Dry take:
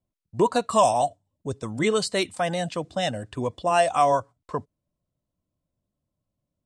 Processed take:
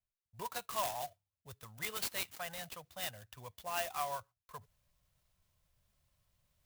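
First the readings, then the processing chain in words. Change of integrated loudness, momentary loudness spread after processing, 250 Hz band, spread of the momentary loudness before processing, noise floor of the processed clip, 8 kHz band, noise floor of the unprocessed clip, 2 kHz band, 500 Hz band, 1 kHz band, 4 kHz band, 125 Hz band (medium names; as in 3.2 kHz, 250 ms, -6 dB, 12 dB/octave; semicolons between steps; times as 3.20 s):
-15.5 dB, 17 LU, -27.5 dB, 14 LU, under -85 dBFS, -9.5 dB, -84 dBFS, -12.0 dB, -22.5 dB, -18.0 dB, -11.0 dB, -21.0 dB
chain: amplifier tone stack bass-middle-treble 10-0-10; reverse; upward compressor, threshold -50 dBFS; reverse; sampling jitter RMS 0.045 ms; trim -6.5 dB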